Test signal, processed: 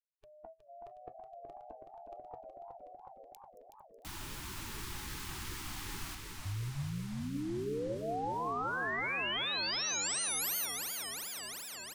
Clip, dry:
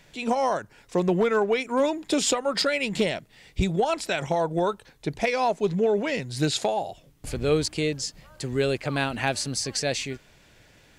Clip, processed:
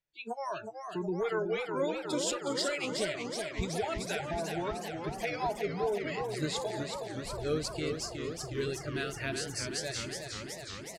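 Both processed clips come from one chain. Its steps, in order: bell 210 Hz -4.5 dB 0.59 oct; de-hum 130.3 Hz, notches 17; frequency-shifting echo 0.224 s, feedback 62%, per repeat +42 Hz, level -16 dB; spectral noise reduction 29 dB; warbling echo 0.37 s, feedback 78%, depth 141 cents, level -6 dB; gain -9 dB

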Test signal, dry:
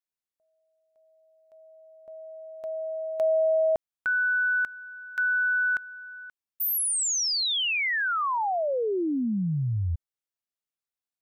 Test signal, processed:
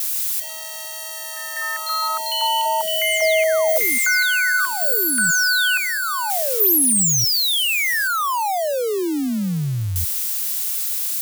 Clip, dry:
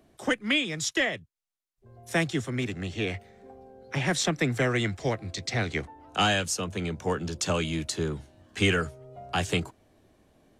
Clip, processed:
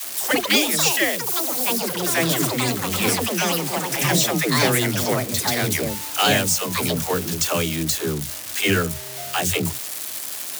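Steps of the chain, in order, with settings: switching spikes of -22 dBFS; HPF 81 Hz; in parallel at -11.5 dB: overloaded stage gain 27.5 dB; on the sum: dispersion lows, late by 94 ms, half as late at 320 Hz; echoes that change speed 0.143 s, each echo +6 st, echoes 3; gain +3.5 dB

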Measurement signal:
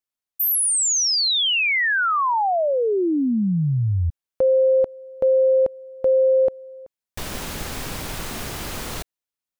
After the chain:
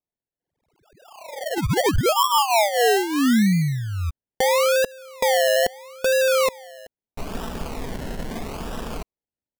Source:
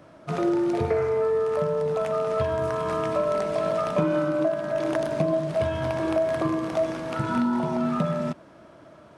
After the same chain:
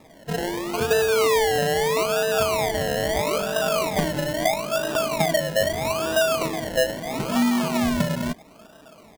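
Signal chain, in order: LPF 2400 Hz 24 dB/oct; comb 4.5 ms, depth 59%; decimation with a swept rate 29×, swing 60% 0.77 Hz

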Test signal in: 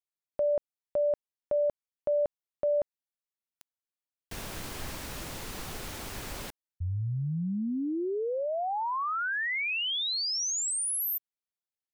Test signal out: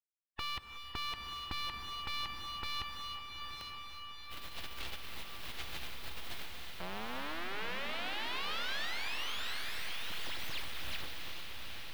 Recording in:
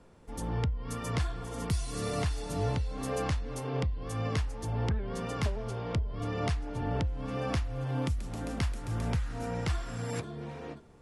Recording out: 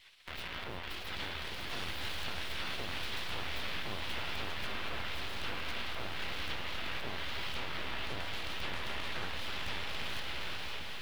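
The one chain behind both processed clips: tracing distortion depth 0.084 ms; in parallel at -8.5 dB: Schmitt trigger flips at -47 dBFS; on the sum: spectral gate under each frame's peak -30 dB weak; half-wave rectifier; resonant high shelf 5000 Hz -13 dB, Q 1.5; limiter -41 dBFS; bell 67 Hz +10 dB 1.2 oct; diffused feedback echo 0.852 s, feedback 48%, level -4 dB; non-linear reverb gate 0.39 s rising, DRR 7.5 dB; mismatched tape noise reduction encoder only; gain +13.5 dB

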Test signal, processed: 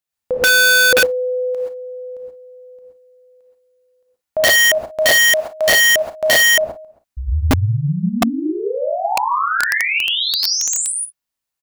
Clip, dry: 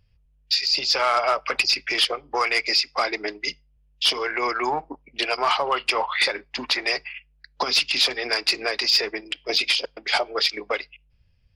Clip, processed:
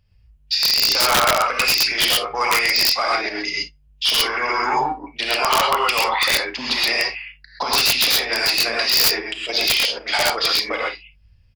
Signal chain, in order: bell 370 Hz -7.5 dB 0.49 oct; early reflections 35 ms -13.5 dB, 52 ms -15 dB; non-linear reverb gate 0.15 s rising, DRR -3.5 dB; wrapped overs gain 8.5 dB; dynamic EQ 8300 Hz, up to -5 dB, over -40 dBFS, Q 6.7

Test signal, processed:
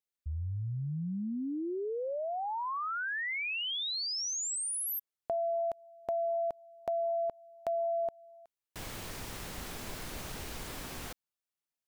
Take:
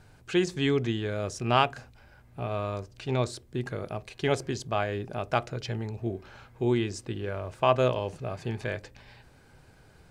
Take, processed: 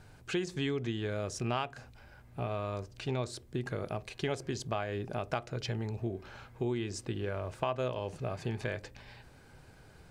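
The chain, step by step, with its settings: compressor 4:1, threshold -31 dBFS

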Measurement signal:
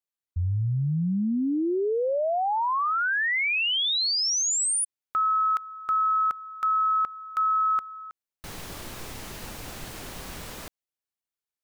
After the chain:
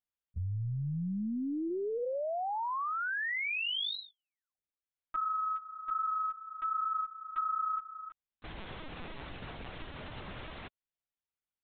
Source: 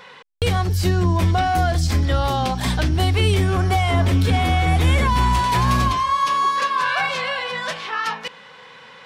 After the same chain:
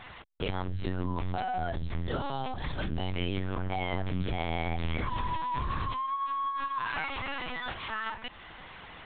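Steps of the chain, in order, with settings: compressor 2:1, threshold -33 dBFS; LPC vocoder at 8 kHz pitch kept; gain -4 dB

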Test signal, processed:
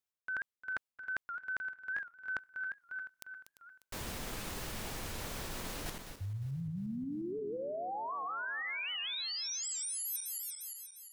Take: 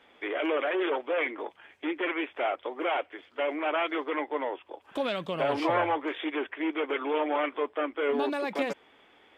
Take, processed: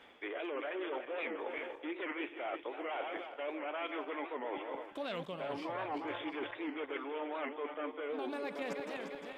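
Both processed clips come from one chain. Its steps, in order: regenerating reverse delay 0.176 s, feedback 64%, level -10.5 dB; reverse; compressor 6:1, threshold -39 dBFS; reverse; record warp 78 rpm, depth 160 cents; gain +1.5 dB

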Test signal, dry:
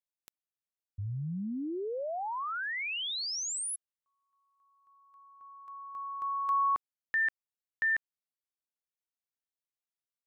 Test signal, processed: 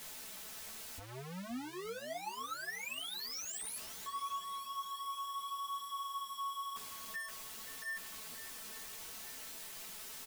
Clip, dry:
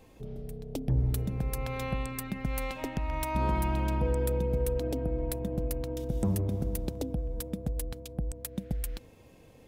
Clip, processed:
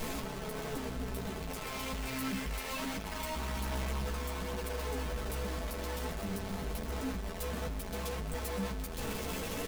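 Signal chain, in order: infinite clipping; comb 4.6 ms, depth 52%; chorus voices 2, 0.66 Hz, delay 13 ms, depth 2.6 ms; swung echo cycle 0.87 s, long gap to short 1.5:1, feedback 43%, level -15 dB; gain -4 dB

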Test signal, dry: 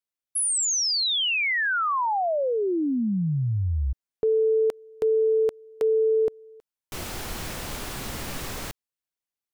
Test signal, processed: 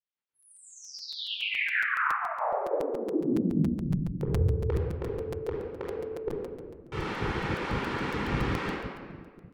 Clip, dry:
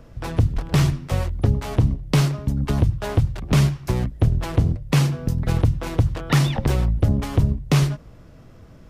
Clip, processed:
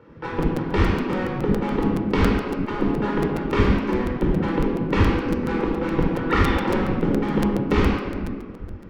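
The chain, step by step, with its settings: vibrato 7.3 Hz 6.2 cents; LPF 2100 Hz 12 dB/oct; bell 650 Hz -8.5 dB 0.43 oct; shoebox room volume 2300 m³, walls mixed, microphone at 4.4 m; spectral gate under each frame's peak -10 dB weak; crackling interface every 0.14 s, samples 256, repeat, from 0.42

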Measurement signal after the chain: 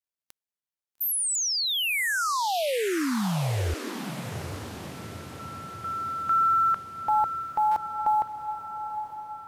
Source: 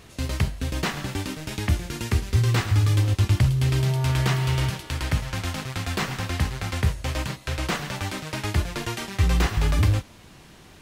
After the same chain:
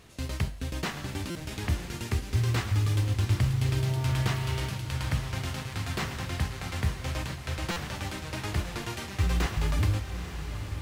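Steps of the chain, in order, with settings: companded quantiser 8-bit; diffused feedback echo 0.881 s, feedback 56%, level -9 dB; stuck buffer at 1.3/7.71, samples 256, times 8; gain -6 dB

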